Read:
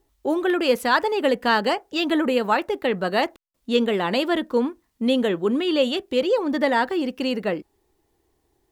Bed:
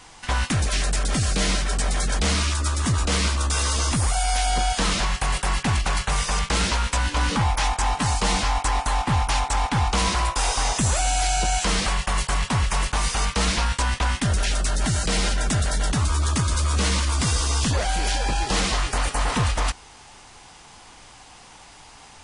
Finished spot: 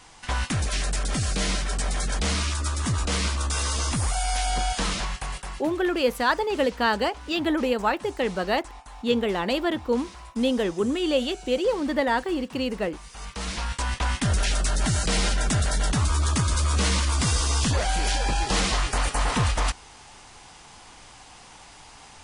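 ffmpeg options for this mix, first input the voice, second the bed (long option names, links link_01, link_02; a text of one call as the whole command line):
ffmpeg -i stem1.wav -i stem2.wav -filter_complex "[0:a]adelay=5350,volume=-3dB[link_01];[1:a]volume=16.5dB,afade=type=out:start_time=4.77:duration=0.96:silence=0.133352,afade=type=in:start_time=13.09:duration=1.24:silence=0.1[link_02];[link_01][link_02]amix=inputs=2:normalize=0" out.wav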